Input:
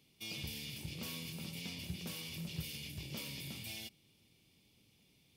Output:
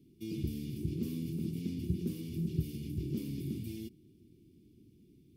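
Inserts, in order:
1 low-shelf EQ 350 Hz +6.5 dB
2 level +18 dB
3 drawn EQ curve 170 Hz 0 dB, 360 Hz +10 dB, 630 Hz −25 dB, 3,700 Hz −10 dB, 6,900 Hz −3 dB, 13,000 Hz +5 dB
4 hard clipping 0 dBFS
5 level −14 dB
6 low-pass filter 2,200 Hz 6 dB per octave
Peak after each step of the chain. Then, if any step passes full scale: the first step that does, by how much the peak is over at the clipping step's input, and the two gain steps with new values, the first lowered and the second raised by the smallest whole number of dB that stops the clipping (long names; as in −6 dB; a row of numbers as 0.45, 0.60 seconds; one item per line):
−23.0, −5.0, −5.0, −5.0, −19.0, −19.0 dBFS
no step passes full scale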